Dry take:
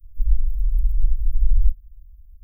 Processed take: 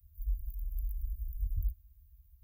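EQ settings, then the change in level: HPF 130 Hz 12 dB/oct; +5.0 dB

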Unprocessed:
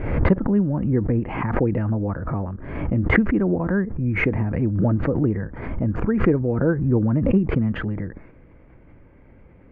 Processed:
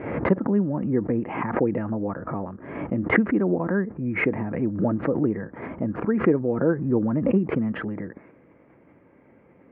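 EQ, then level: BPF 200–2500 Hz; notch 1500 Hz, Q 22; 0.0 dB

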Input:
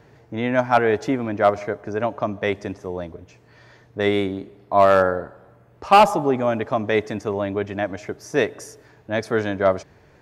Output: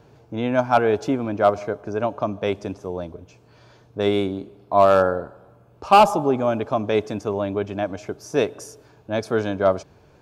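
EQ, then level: bell 1900 Hz -15 dB 0.26 oct; 0.0 dB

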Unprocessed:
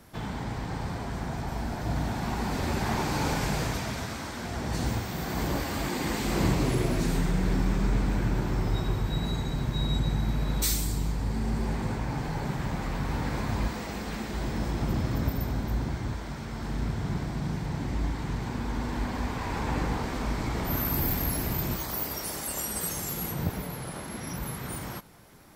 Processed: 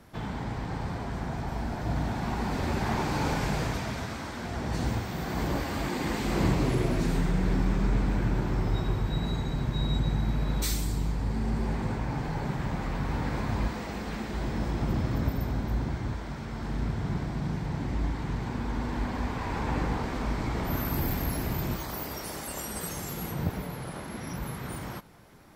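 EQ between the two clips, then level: high shelf 5200 Hz -7.5 dB; 0.0 dB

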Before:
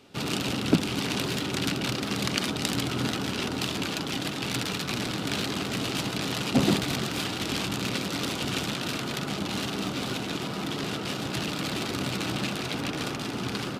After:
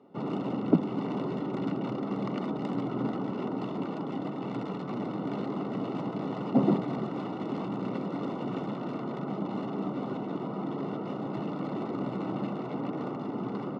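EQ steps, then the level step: polynomial smoothing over 65 samples; HPF 150 Hz 24 dB/oct; air absorption 75 m; 0.0 dB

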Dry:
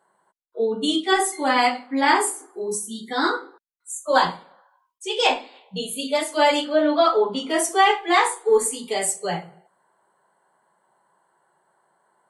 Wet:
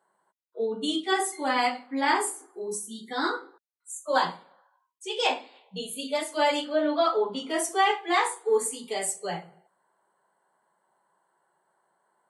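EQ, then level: HPF 140 Hz; -6.0 dB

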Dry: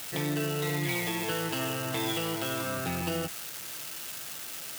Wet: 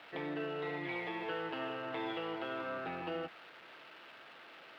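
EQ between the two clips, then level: air absorption 470 m; three-band isolator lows -13 dB, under 240 Hz, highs -12 dB, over 5700 Hz; low shelf 250 Hz -7.5 dB; -2.0 dB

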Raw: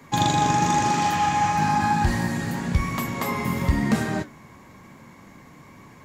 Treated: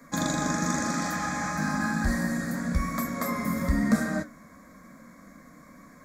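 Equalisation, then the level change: fixed phaser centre 580 Hz, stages 8; 0.0 dB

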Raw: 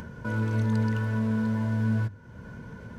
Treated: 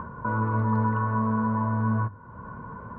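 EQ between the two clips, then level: synth low-pass 1100 Hz, resonance Q 10; 0.0 dB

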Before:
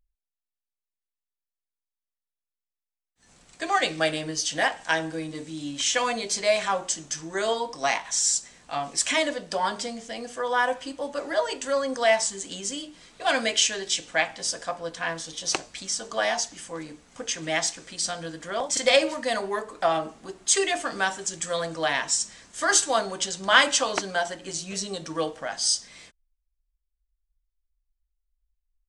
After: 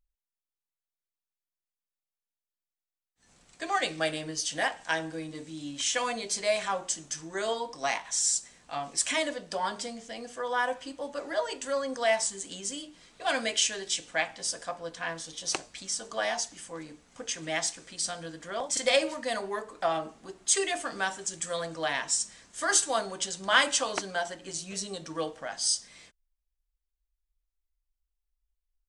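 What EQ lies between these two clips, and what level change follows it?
dynamic EQ 9500 Hz, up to +6 dB, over -46 dBFS, Q 2.4; -5.0 dB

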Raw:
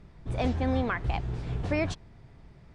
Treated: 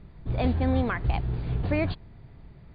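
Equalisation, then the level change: brick-wall FIR low-pass 4800 Hz; low shelf 320 Hz +4.5 dB; 0.0 dB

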